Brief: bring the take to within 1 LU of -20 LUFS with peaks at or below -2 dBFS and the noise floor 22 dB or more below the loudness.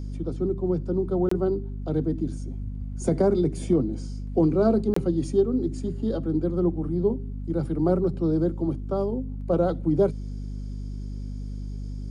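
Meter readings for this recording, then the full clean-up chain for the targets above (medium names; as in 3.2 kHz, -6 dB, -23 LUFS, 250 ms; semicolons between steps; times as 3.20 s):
dropouts 2; longest dropout 24 ms; hum 50 Hz; highest harmonic 250 Hz; hum level -30 dBFS; loudness -26.0 LUFS; peak level -10.5 dBFS; loudness target -20.0 LUFS
-> interpolate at 1.29/4.94 s, 24 ms; hum notches 50/100/150/200/250 Hz; trim +6 dB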